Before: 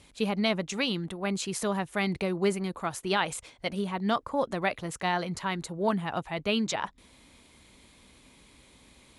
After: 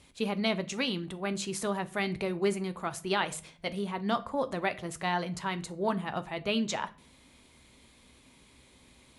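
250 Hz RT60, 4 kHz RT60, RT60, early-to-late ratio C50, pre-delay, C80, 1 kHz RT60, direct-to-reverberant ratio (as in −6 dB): 0.75 s, 0.35 s, 0.45 s, 19.0 dB, 8 ms, 23.5 dB, 0.40 s, 10.5 dB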